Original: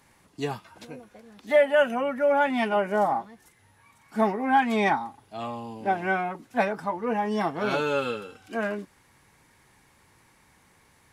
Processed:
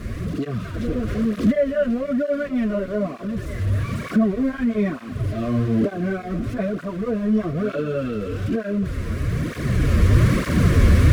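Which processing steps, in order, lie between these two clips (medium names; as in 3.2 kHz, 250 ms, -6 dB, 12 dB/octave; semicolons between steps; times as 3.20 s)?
jump at every zero crossing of -25.5 dBFS; recorder AGC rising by 9.1 dB/s; Butterworth band-stop 850 Hz, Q 2.1; tilt EQ -4.5 dB/octave; on a send: thinning echo 491 ms, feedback 81%, level -16.5 dB; on the sum: cancelling through-zero flanger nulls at 1.1 Hz, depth 7.9 ms; trim -3 dB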